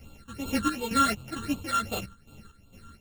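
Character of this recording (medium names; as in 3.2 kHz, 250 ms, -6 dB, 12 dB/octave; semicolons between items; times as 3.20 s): a buzz of ramps at a fixed pitch in blocks of 32 samples; phasing stages 8, 2.7 Hz, lowest notch 660–1800 Hz; chopped level 2.2 Hz, depth 65%, duty 50%; a shimmering, thickened sound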